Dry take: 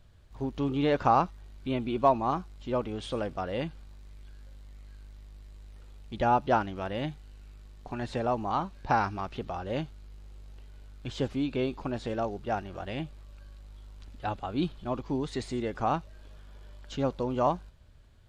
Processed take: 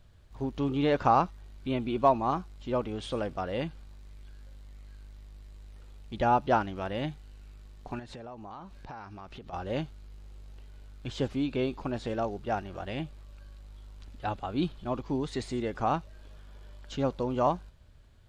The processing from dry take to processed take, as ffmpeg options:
-filter_complex "[0:a]asettb=1/sr,asplit=3[a][b][c];[a]atrim=end=7.994[d];[b]atrim=start=7.99:end=9.53,asetpts=PTS-STARTPTS,afade=t=in:d=0.004:c=qsin,afade=t=out:st=1.536:d=0.004:c=qsin,acompressor=threshold=-41dB:ratio=6:attack=3.2:release=140:knee=1:detection=peak[e];[c]atrim=start=9.526[f];[d][e]acrossfade=d=0.004:c1=hsin:c2=qsin[g];[g][f]acrossfade=d=0.004:c1=qsin:c2=hsin"

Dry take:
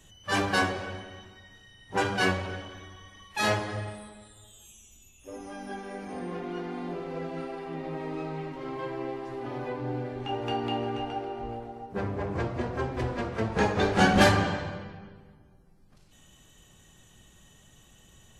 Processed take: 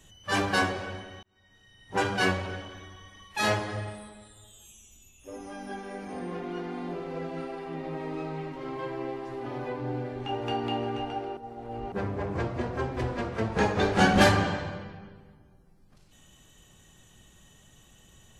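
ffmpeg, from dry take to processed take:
-filter_complex "[0:a]asplit=4[a][b][c][d];[a]atrim=end=1.23,asetpts=PTS-STARTPTS,afade=t=out:st=1.226:d=0.004:c=hsin[e];[b]atrim=start=1.23:end=11.372,asetpts=PTS-STARTPTS,afade=t=in:d=0.73[f];[c]atrim=start=11.368:end=11.922,asetpts=PTS-STARTPTS,areverse[g];[d]atrim=start=11.918[h];[e][f]concat=n=2:v=0:a=1[i];[i][g]acrossfade=d=0.004:c1=hsin:c2=hsin[j];[j][h]acrossfade=d=0.004:c1=hsin:c2=hsin"

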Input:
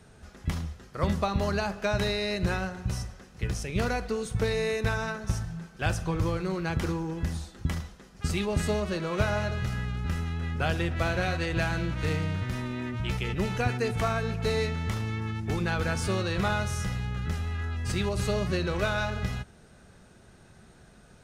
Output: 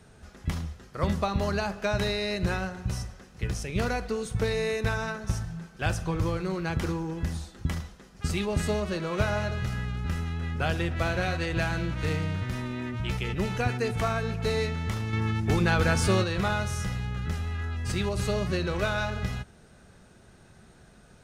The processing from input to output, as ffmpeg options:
-filter_complex "[0:a]asplit=3[a][b][c];[a]atrim=end=15.132[d];[b]atrim=start=15.128:end=16.242,asetpts=PTS-STARTPTS,volume=5dB[e];[c]atrim=start=16.238[f];[d][e]acrossfade=d=0.004:c1=hsin:c2=hsin[g];[g][f]acrossfade=d=0.004:c1=hsin:c2=hsin"

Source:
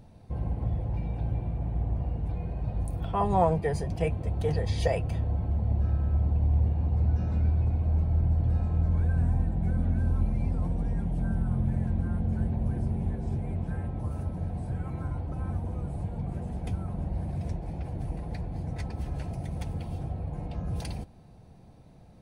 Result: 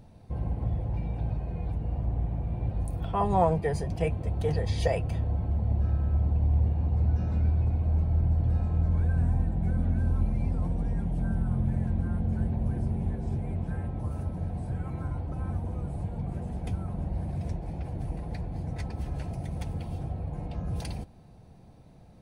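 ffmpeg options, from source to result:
-filter_complex "[0:a]asplit=3[a][b][c];[a]atrim=end=1.302[d];[b]atrim=start=1.298:end=2.712,asetpts=PTS-STARTPTS,areverse[e];[c]atrim=start=2.708[f];[d][e]acrossfade=d=0.004:c1=hsin:c2=hsin[g];[g][f]acrossfade=d=0.004:c1=hsin:c2=hsin"

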